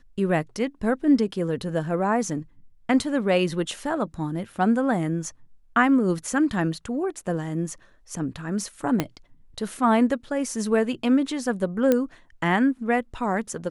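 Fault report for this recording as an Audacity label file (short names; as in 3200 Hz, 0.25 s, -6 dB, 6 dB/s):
9.000000	9.000000	pop -8 dBFS
11.920000	11.920000	pop -8 dBFS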